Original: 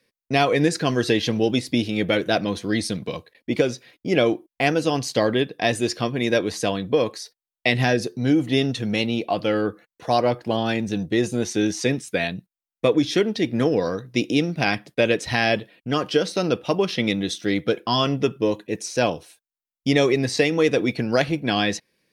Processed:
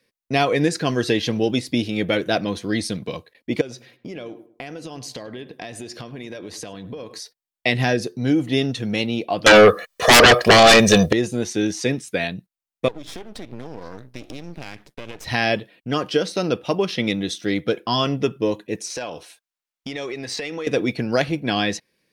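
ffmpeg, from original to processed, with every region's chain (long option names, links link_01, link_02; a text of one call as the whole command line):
ffmpeg -i in.wav -filter_complex "[0:a]asettb=1/sr,asplit=3[link_01][link_02][link_03];[link_01]atrim=end=3.614[link_04];[link_02]atrim=start=3.61:end=7.2,asetpts=PTS-STARTPTS,afade=type=in:duration=0.004:curve=qsin,afade=type=out:start_time=3.586:duration=0.004:curve=qsin,acompressor=threshold=-30dB:ratio=12:attack=3.2:release=140:knee=1:detection=peak,asplit=2[link_05][link_06];[link_06]adelay=103,lowpass=frequency=1700:poles=1,volume=-14.5dB,asplit=2[link_07][link_08];[link_08]adelay=103,lowpass=frequency=1700:poles=1,volume=0.36,asplit=2[link_09][link_10];[link_10]adelay=103,lowpass=frequency=1700:poles=1,volume=0.36[link_11];[link_05][link_07][link_09][link_11]amix=inputs=4:normalize=0,atrim=end_sample=158319[link_12];[link_03]atrim=start=7.196[link_13];[link_04][link_12]acrossfade=duration=0.004:curve1=hsin:curve2=qsin[link_14];[link_14][link_13]acrossfade=duration=0.004:curve1=qsin:curve2=hsin,asettb=1/sr,asplit=3[link_15][link_16][link_17];[link_15]atrim=end=9.464[link_18];[link_16]atrim=start=9.46:end=11.13,asetpts=PTS-STARTPTS,afade=type=in:duration=0.004:curve=qsin,afade=type=out:start_time=1.666:duration=0.004:curve=qsin,equalizer=frequency=120:width_type=o:width=1.8:gain=-13,aecho=1:1:1.7:0.74,atrim=end_sample=73647,aeval=exprs='0.501*sin(PI/2*6.31*val(0)/0.501)':channel_layout=same[link_19];[link_17]atrim=start=11.126[link_20];[link_18][link_19]acrossfade=duration=0.004:curve1=hsin:curve2=qsin[link_21];[link_21][link_20]acrossfade=duration=0.004:curve1=qsin:curve2=hsin,asettb=1/sr,asplit=3[link_22][link_23][link_24];[link_22]atrim=end=12.884[link_25];[link_23]atrim=start=12.88:end=15.25,asetpts=PTS-STARTPTS,afade=type=in:duration=0.004:curve=qsin,afade=type=out:start_time=2.366:duration=0.004:curve=qsin,acompressor=threshold=-28dB:ratio=10:attack=3.2:release=140:knee=1:detection=peak,aeval=exprs='max(val(0),0)':channel_layout=same[link_26];[link_24]atrim=start=15.246[link_27];[link_25][link_26]acrossfade=duration=0.004:curve1=hsin:curve2=qsin[link_28];[link_28][link_27]acrossfade=duration=0.004:curve1=qsin:curve2=hsin,asettb=1/sr,asplit=3[link_29][link_30][link_31];[link_29]atrim=end=18.904[link_32];[link_30]atrim=start=18.9:end=20.67,asetpts=PTS-STARTPTS,afade=type=in:duration=0.004:curve=qsin,afade=type=out:start_time=1.766:duration=0.004:curve=qsin,acompressor=threshold=-27dB:ratio=10:attack=3.2:release=140:knee=1:detection=peak,asplit=2[link_33][link_34];[link_34]highpass=frequency=720:poles=1,volume=11dB,asoftclip=type=tanh:threshold=-14.5dB[link_35];[link_33][link_35]amix=inputs=2:normalize=0,lowpass=frequency=5300:poles=1,volume=-6dB[link_36];[link_31]atrim=start=20.666[link_37];[link_32][link_36]acrossfade=duration=0.004:curve1=hsin:curve2=qsin[link_38];[link_38][link_37]acrossfade=duration=0.004:curve1=qsin:curve2=hsin" out.wav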